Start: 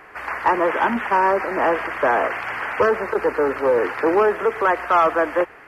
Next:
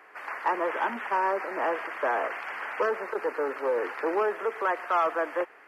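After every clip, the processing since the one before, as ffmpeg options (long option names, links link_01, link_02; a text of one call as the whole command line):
ffmpeg -i in.wav -af "highpass=330,volume=-8.5dB" out.wav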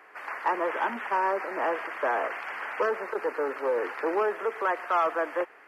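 ffmpeg -i in.wav -af anull out.wav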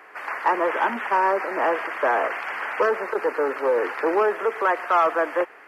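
ffmpeg -i in.wav -af "acontrast=51" out.wav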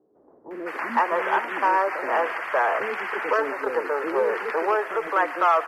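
ffmpeg -i in.wav -filter_complex "[0:a]acrossover=split=390[link_01][link_02];[link_02]adelay=510[link_03];[link_01][link_03]amix=inputs=2:normalize=0" out.wav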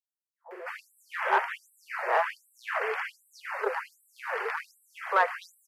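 ffmpeg -i in.wav -af "aeval=exprs='0.335*(cos(1*acos(clip(val(0)/0.335,-1,1)))-cos(1*PI/2))+0.0266*(cos(3*acos(clip(val(0)/0.335,-1,1)))-cos(3*PI/2))':channel_layout=same,afftfilt=real='re*gte(b*sr/1024,350*pow(7800/350,0.5+0.5*sin(2*PI*1.3*pts/sr)))':imag='im*gte(b*sr/1024,350*pow(7800/350,0.5+0.5*sin(2*PI*1.3*pts/sr)))':win_size=1024:overlap=0.75" out.wav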